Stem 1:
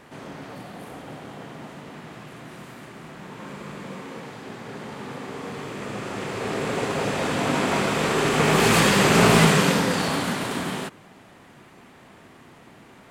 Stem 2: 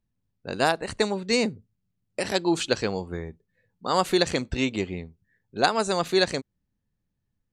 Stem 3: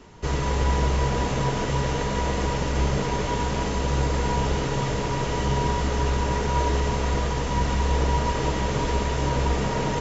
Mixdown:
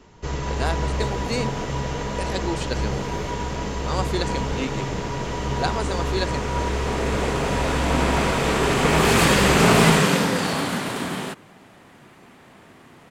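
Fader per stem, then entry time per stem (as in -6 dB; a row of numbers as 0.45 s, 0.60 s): +0.5 dB, -5.0 dB, -2.5 dB; 0.45 s, 0.00 s, 0.00 s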